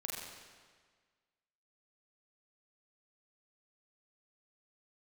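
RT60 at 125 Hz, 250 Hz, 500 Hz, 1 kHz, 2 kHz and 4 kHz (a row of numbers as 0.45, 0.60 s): 1.6, 1.6, 1.6, 1.6, 1.5, 1.4 s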